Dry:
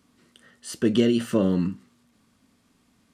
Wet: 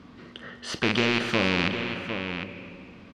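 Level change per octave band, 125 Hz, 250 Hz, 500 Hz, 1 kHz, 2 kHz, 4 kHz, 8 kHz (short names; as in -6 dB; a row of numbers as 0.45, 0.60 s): -2.5, -5.5, -3.0, +10.0, +15.0, +8.0, -2.0 dB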